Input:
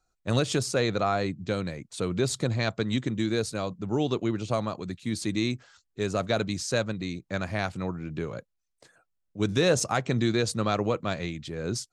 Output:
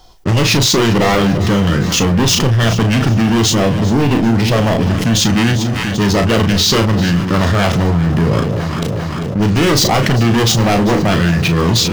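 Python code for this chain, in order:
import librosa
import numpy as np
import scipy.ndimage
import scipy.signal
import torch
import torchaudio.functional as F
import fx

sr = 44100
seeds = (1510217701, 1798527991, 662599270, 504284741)

y = fx.leveller(x, sr, passes=5)
y = fx.formant_shift(y, sr, semitones=-5)
y = fx.doubler(y, sr, ms=35.0, db=-7.0)
y = fx.echo_alternate(y, sr, ms=198, hz=880.0, feedback_pct=72, wet_db=-13.5)
y = fx.env_flatten(y, sr, amount_pct=70)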